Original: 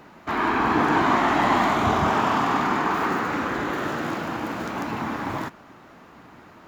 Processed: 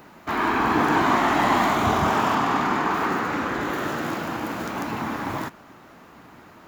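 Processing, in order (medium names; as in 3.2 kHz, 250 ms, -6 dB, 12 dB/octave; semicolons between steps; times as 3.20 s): treble shelf 8.9 kHz +11 dB, from 2.35 s +2.5 dB, from 3.61 s +9 dB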